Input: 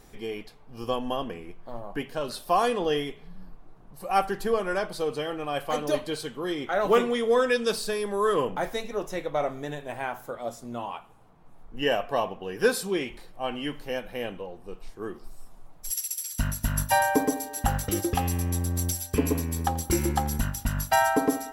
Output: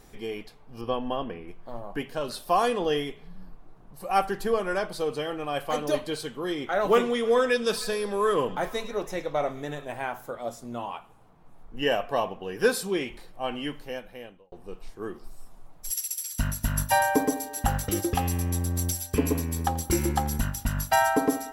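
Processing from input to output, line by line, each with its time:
0.81–1.48 running mean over 6 samples
6.84–9.85 delay with a stepping band-pass 0.105 s, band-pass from 4800 Hz, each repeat -0.7 oct, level -11 dB
13.6–14.52 fade out

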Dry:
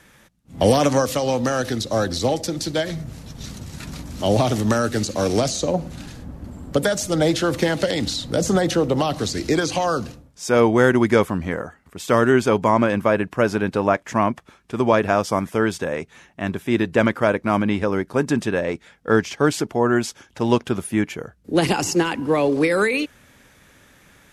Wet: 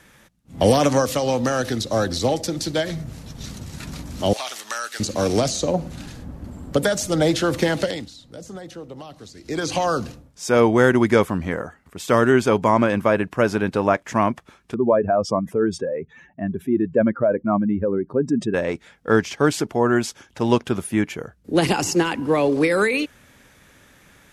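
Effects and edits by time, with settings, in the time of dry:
4.33–5 HPF 1400 Hz
7.79–9.73 dip -17.5 dB, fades 0.29 s
14.74–18.54 spectral contrast raised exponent 2.1

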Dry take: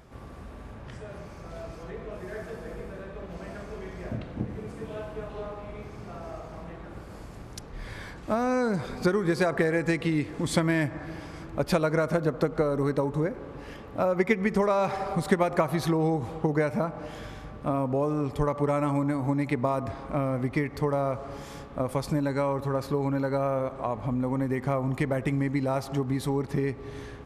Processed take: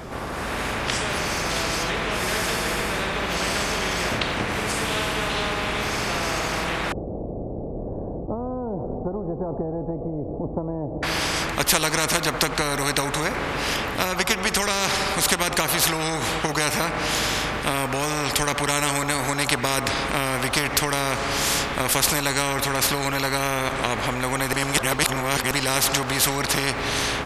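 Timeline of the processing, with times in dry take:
6.92–11.03 steep low-pass 530 Hz
24.53–25.51 reverse
whole clip: AGC; spectral compressor 4:1

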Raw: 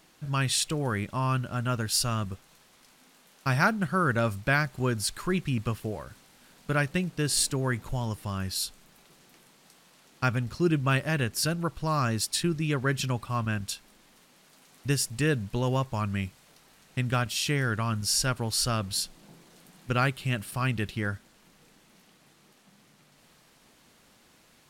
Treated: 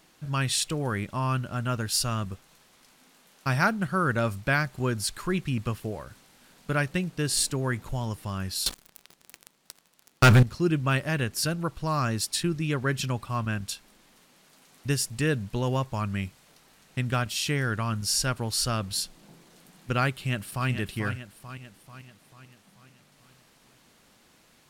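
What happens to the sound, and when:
8.66–10.43 sample leveller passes 5
20.13–20.69 echo throw 0.44 s, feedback 55%, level -8 dB

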